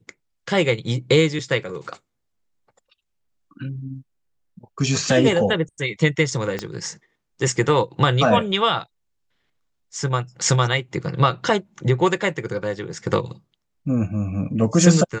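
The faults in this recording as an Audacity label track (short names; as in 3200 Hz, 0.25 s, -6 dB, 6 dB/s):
6.590000	6.590000	pop -12 dBFS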